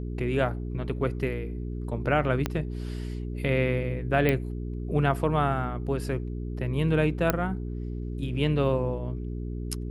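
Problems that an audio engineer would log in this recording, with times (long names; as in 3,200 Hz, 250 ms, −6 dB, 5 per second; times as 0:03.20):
mains hum 60 Hz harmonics 7 −33 dBFS
0:02.46: click −12 dBFS
0:04.29: click −12 dBFS
0:07.30: click −8 dBFS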